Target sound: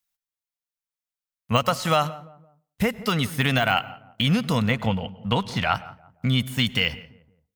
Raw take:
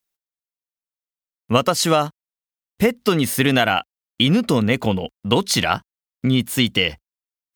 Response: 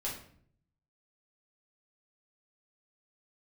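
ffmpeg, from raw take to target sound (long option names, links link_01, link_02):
-filter_complex "[0:a]equalizer=frequency=350:width_type=o:width=1:gain=-14,deesser=0.55,asettb=1/sr,asplit=3[link_01][link_02][link_03];[link_01]atrim=end=4.714[link_04];[link_02]atrim=start=4.71:end=5.75,asetpts=PTS-STARTPTS,afade=type=in:duration=0.004:curve=qsin,afade=type=out:start_time=1.036:duration=0.004:curve=qsin,lowpass=frequency=2900:poles=1[link_05];[link_03]atrim=start=5.746[link_06];[link_04][link_05]acrossfade=duration=0.004:curve1=hsin:curve2=qsin[link_07];[link_07][link_06]acrossfade=duration=0.004:curve1=qsin:curve2=hsin,asplit=2[link_08][link_09];[link_09]adelay=171,lowpass=frequency=960:poles=1,volume=-17dB,asplit=2[link_10][link_11];[link_11]adelay=171,lowpass=frequency=960:poles=1,volume=0.41,asplit=2[link_12][link_13];[link_13]adelay=171,lowpass=frequency=960:poles=1,volume=0.41[link_14];[link_08][link_10][link_12][link_14]amix=inputs=4:normalize=0,asplit=2[link_15][link_16];[1:a]atrim=start_sample=2205,atrim=end_sample=6174,adelay=99[link_17];[link_16][link_17]afir=irnorm=-1:irlink=0,volume=-23dB[link_18];[link_15][link_18]amix=inputs=2:normalize=0"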